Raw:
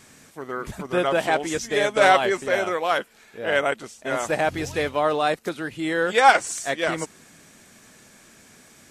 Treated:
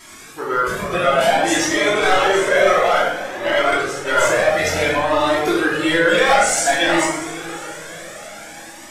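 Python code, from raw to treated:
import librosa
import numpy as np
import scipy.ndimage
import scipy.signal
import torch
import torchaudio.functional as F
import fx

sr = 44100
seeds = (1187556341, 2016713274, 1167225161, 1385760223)

p1 = fx.low_shelf(x, sr, hz=240.0, db=-11.5)
p2 = fx.over_compress(p1, sr, threshold_db=-27.0, ratio=-0.5)
p3 = p1 + (p2 * librosa.db_to_amplitude(2.5))
p4 = np.clip(p3, -10.0 ** (-11.0 / 20.0), 10.0 ** (-11.0 / 20.0))
p5 = fx.echo_diffused(p4, sr, ms=621, feedback_pct=54, wet_db=-15)
p6 = fx.room_shoebox(p5, sr, seeds[0], volume_m3=440.0, walls='mixed', distance_m=2.9)
y = fx.comb_cascade(p6, sr, direction='rising', hz=0.56)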